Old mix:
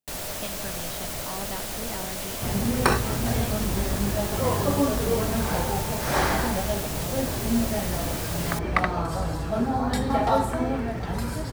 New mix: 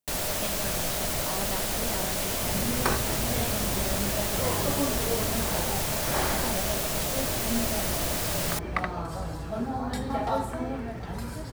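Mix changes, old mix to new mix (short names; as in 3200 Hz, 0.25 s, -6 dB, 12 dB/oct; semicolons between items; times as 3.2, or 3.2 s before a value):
first sound +3.5 dB; second sound -6.0 dB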